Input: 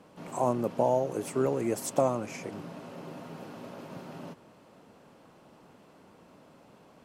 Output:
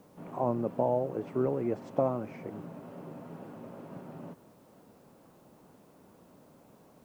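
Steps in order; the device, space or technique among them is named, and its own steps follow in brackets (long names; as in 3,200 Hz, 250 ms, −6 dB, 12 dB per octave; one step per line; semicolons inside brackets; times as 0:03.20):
cassette deck with a dirty head (head-to-tape spacing loss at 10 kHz 42 dB; tape wow and flutter; white noise bed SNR 36 dB)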